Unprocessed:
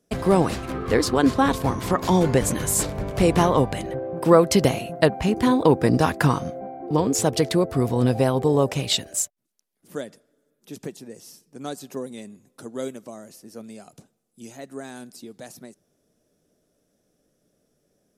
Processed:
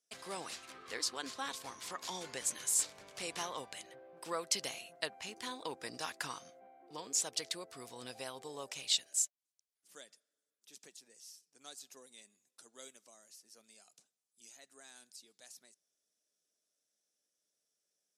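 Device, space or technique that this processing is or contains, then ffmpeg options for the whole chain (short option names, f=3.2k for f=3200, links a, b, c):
piezo pickup straight into a mixer: -af "lowpass=6.8k,aderivative,volume=-3dB"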